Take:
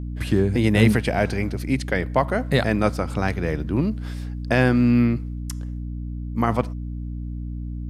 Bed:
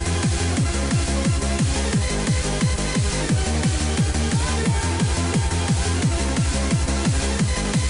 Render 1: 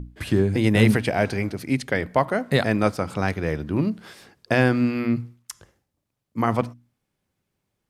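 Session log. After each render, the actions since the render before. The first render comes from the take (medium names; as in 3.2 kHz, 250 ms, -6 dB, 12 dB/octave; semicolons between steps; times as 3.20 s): hum notches 60/120/180/240/300 Hz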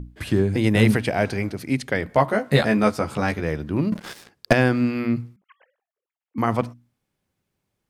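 2.08–3.41 s: doubling 14 ms -3 dB; 3.92–4.53 s: waveshaping leveller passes 3; 5.36–6.38 s: formants replaced by sine waves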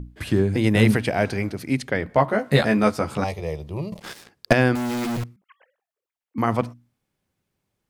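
1.88–2.39 s: treble shelf 4.9 kHz -8.5 dB; 3.24–4.02 s: static phaser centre 630 Hz, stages 4; 4.75–5.24 s: companded quantiser 2-bit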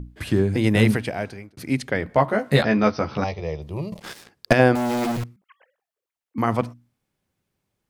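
0.79–1.57 s: fade out; 2.62–3.62 s: brick-wall FIR low-pass 6.2 kHz; 4.59–5.12 s: peaking EQ 640 Hz +9 dB 1.1 oct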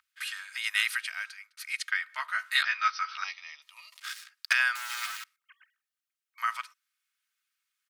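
elliptic high-pass 1.3 kHz, stop band 70 dB; comb 3.2 ms, depth 40%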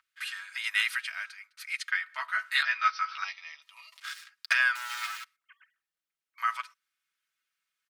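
treble shelf 5.1 kHz -6.5 dB; comb 6.1 ms, depth 47%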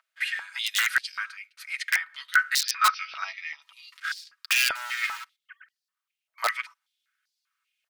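integer overflow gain 18.5 dB; step-sequenced high-pass 5.1 Hz 640–4600 Hz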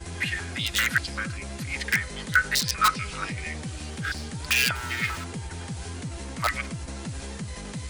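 add bed -14.5 dB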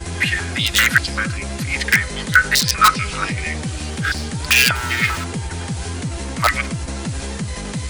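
trim +9.5 dB; peak limiter -1 dBFS, peak gain reduction 2 dB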